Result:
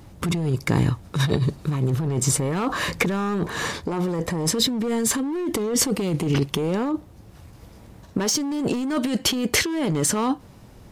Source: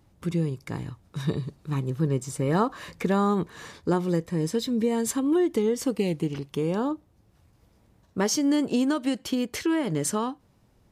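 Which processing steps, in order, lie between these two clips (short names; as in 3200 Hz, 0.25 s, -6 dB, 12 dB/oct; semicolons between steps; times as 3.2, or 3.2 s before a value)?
in parallel at +2.5 dB: limiter -21.5 dBFS, peak gain reduction 9 dB; on the sum: overloaded stage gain 16.5 dB; 3.38–4.49 dynamic EQ 760 Hz, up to +6 dB, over -38 dBFS, Q 1; negative-ratio compressor -26 dBFS, ratio -1; gain +3.5 dB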